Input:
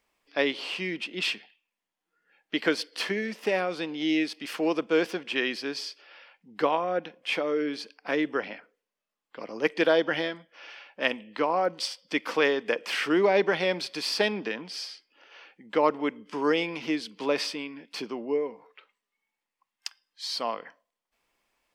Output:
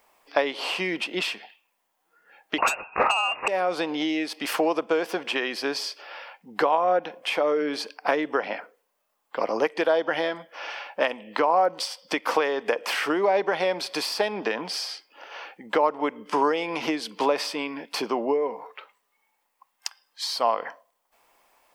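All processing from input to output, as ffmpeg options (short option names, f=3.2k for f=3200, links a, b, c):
-filter_complex "[0:a]asettb=1/sr,asplit=3[a][b][c];[a]atrim=end=2.584[d];[b]atrim=start=2.58:end=3.48,asetpts=PTS-STARTPTS,afade=t=in:d=0.004:c=qsin,afade=t=out:st=0.896:d=0.004:c=qsin,equalizer=f=190:t=o:w=0.41:g=4.5,lowpass=f=2.6k:t=q:w=0.5098,lowpass=f=2.6k:t=q:w=0.6013,lowpass=f=2.6k:t=q:w=0.9,lowpass=f=2.6k:t=q:w=2.563,afreqshift=-3000,aeval=exprs='0.266*sin(PI/2*2.82*val(0)/0.266)':c=same[e];[c]atrim=start=3.476[f];[d][e]acrossfade=d=0.004:c1=hsin:c2=qsin[g];[g][f]acrossfade=d=0.004:c1=qsin:c2=hsin,aemphasis=mode=production:type=50kf,acompressor=threshold=-31dB:ratio=10,equalizer=f=800:w=0.64:g=14.5,volume=2.5dB"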